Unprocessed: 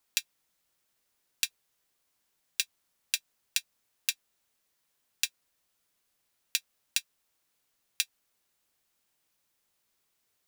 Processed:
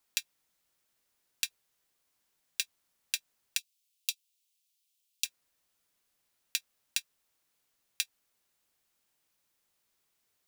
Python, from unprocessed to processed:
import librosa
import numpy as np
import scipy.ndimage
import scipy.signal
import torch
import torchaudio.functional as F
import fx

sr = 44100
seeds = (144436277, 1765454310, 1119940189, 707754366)

p1 = fx.steep_highpass(x, sr, hz=2600.0, slope=36, at=(3.57, 5.24), fade=0.02)
p2 = fx.level_steps(p1, sr, step_db=21)
p3 = p1 + F.gain(torch.from_numpy(p2), -0.5).numpy()
y = F.gain(torch.from_numpy(p3), -4.0).numpy()